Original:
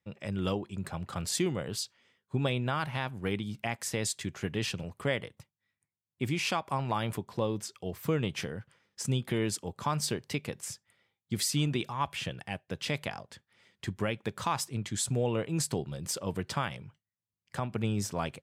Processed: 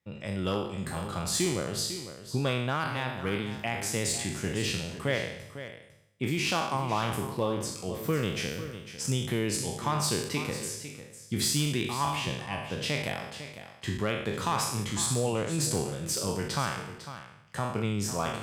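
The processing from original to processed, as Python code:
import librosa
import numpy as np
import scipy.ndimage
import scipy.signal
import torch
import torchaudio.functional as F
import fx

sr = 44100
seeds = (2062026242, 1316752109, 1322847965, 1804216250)

p1 = fx.spec_trails(x, sr, decay_s=0.8)
p2 = fx.clip_asym(p1, sr, top_db=-22.5, bottom_db=-18.0)
y = p2 + fx.echo_single(p2, sr, ms=501, db=-12.0, dry=0)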